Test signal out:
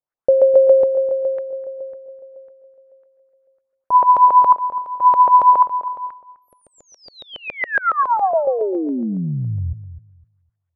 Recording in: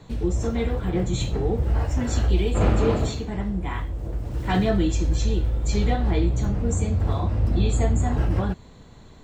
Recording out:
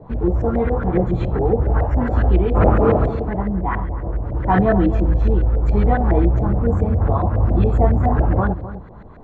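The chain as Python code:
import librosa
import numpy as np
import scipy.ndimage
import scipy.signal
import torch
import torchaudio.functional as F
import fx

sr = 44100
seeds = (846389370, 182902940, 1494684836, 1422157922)

y = fx.filter_lfo_lowpass(x, sr, shape='saw_up', hz=7.2, low_hz=550.0, high_hz=1800.0, q=2.8)
y = fx.echo_filtered(y, sr, ms=255, feedback_pct=20, hz=1000.0, wet_db=-12)
y = y * 10.0 ** (4.5 / 20.0)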